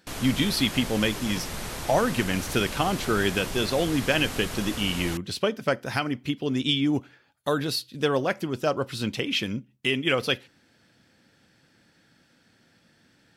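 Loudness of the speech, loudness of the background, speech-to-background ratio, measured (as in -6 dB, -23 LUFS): -26.5 LUFS, -34.5 LUFS, 8.0 dB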